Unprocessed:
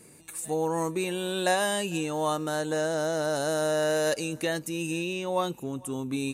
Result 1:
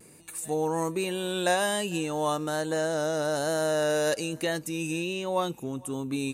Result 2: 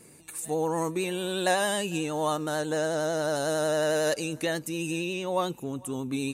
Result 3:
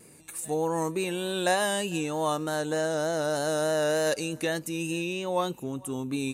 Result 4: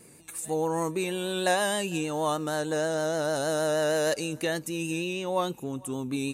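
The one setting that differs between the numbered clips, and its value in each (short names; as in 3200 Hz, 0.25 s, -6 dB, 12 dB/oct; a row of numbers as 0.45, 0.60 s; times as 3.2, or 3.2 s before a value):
vibrato, rate: 1.2, 11, 3.3, 6.4 Hz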